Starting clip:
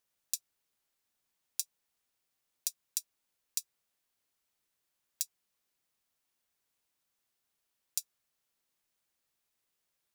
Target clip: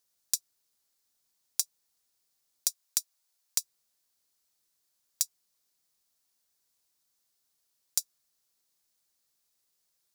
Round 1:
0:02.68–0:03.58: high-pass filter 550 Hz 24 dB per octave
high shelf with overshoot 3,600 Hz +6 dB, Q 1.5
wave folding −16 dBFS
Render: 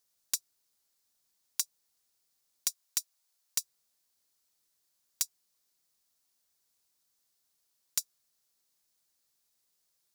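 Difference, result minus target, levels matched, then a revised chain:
wave folding: distortion +14 dB
0:02.68–0:03.58: high-pass filter 550 Hz 24 dB per octave
high shelf with overshoot 3,600 Hz +6 dB, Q 1.5
wave folding −4.5 dBFS

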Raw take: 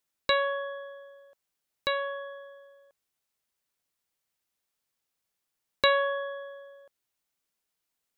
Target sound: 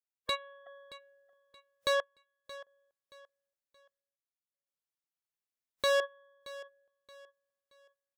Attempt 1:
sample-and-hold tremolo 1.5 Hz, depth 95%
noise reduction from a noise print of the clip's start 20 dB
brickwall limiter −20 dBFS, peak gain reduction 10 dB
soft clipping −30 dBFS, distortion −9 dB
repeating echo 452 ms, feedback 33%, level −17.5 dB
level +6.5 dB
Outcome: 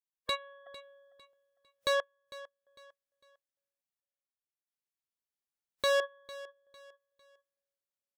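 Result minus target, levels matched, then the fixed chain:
echo 173 ms early
sample-and-hold tremolo 1.5 Hz, depth 95%
noise reduction from a noise print of the clip's start 20 dB
brickwall limiter −20 dBFS, peak gain reduction 10 dB
soft clipping −30 dBFS, distortion −9 dB
repeating echo 625 ms, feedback 33%, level −17.5 dB
level +6.5 dB

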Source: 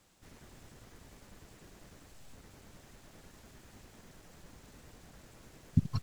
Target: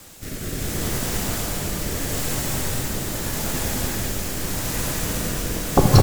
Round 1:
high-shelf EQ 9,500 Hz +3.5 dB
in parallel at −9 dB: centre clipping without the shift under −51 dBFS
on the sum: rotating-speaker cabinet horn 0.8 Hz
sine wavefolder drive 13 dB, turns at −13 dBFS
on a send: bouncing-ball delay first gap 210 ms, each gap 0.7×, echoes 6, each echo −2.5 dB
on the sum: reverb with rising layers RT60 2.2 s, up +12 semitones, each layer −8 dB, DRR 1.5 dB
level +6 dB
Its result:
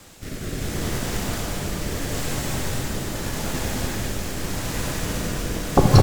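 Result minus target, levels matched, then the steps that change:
8,000 Hz band −2.5 dB
change: high-shelf EQ 9,500 Hz +15 dB

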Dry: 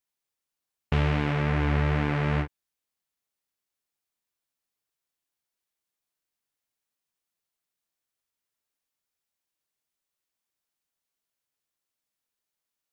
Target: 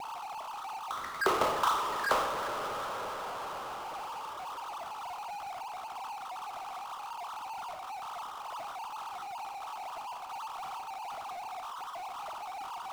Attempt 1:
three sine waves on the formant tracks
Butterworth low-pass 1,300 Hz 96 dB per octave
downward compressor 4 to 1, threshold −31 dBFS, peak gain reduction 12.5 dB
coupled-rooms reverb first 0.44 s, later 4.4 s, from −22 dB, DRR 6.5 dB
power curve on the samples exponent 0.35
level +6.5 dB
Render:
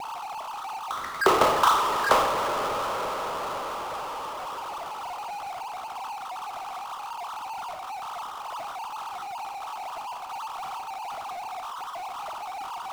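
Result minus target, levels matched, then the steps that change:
downward compressor: peak gain reduction −8 dB
change: downward compressor 4 to 1, threshold −42 dBFS, peak gain reduction 20.5 dB

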